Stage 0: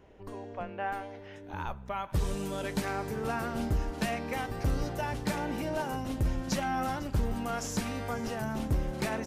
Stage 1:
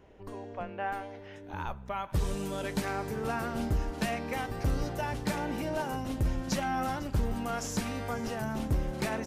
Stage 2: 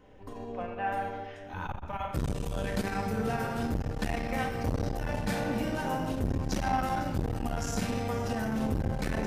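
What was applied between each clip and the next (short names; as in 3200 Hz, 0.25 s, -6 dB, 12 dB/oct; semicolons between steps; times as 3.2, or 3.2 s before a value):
nothing audible
flange 0.27 Hz, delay 6.6 ms, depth 7.1 ms, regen +76%; shoebox room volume 1500 m³, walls mixed, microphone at 2 m; core saturation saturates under 280 Hz; gain +3.5 dB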